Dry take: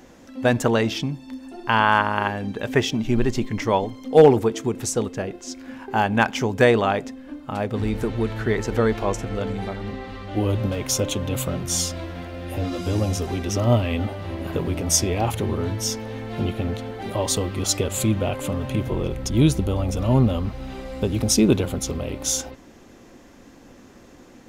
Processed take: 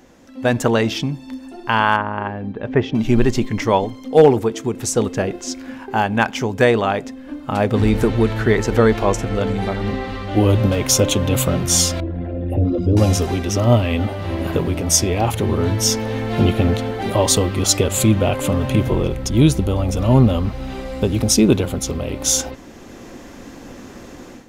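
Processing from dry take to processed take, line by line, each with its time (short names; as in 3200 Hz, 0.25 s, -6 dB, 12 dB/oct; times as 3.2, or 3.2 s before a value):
1.96–2.95 tape spacing loss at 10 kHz 37 dB
12–12.97 formant sharpening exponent 2
whole clip: AGC gain up to 11.5 dB; gain -1 dB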